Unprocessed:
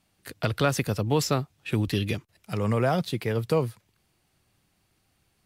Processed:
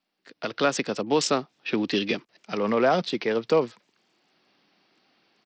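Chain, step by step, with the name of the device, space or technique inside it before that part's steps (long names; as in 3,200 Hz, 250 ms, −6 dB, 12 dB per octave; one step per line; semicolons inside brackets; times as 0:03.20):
Bluetooth headset (high-pass filter 220 Hz 24 dB per octave; automatic gain control gain up to 16 dB; downsampling to 16,000 Hz; level −8.5 dB; SBC 64 kbit/s 44,100 Hz)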